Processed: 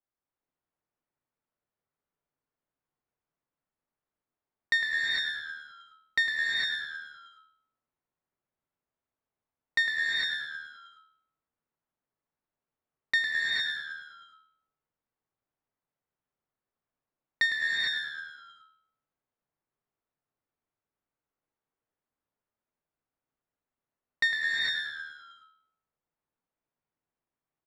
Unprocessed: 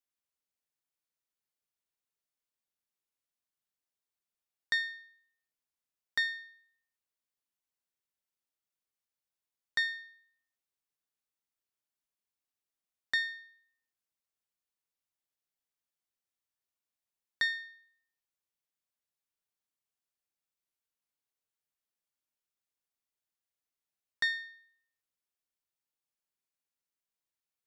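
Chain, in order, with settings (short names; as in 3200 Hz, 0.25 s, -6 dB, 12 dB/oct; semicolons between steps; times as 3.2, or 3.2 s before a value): dynamic EQ 4500 Hz, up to -6 dB, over -50 dBFS, Q 2.8; low-pass opened by the level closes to 1300 Hz, open at -39.5 dBFS; on a send: frequency-shifting echo 0.105 s, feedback 59%, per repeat -76 Hz, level -8.5 dB; on the sum: non-linear reverb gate 0.48 s rising, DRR -2.5 dB; gain +4.5 dB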